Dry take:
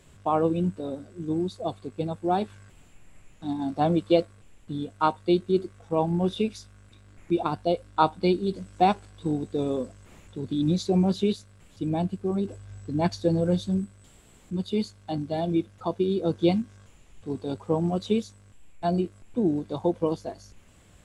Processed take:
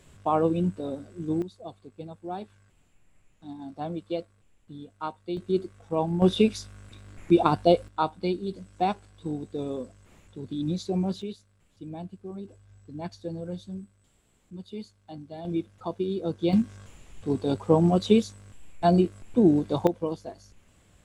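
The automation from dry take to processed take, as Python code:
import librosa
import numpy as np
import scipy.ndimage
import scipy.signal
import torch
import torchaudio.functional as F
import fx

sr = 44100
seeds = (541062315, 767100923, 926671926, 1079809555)

y = fx.gain(x, sr, db=fx.steps((0.0, 0.0), (1.42, -10.5), (5.37, -2.0), (6.22, 5.5), (7.88, -5.0), (11.22, -11.5), (15.45, -4.0), (16.53, 5.0), (19.87, -4.0)))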